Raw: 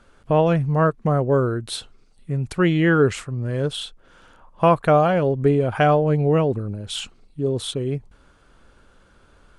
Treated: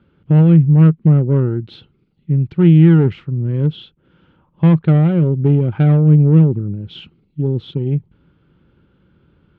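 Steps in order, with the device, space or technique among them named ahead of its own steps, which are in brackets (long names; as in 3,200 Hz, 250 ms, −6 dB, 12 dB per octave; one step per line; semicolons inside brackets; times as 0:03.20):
0:05.78–0:06.91: high-frequency loss of the air 74 metres
guitar amplifier (tube saturation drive 13 dB, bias 0.65; bass and treble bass +12 dB, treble −12 dB; loudspeaker in its box 100–4,200 Hz, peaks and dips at 160 Hz +8 dB, 340 Hz +7 dB, 680 Hz −9 dB, 1,100 Hz −6 dB, 1,700 Hz −5 dB, 3,100 Hz +4 dB)
level −1 dB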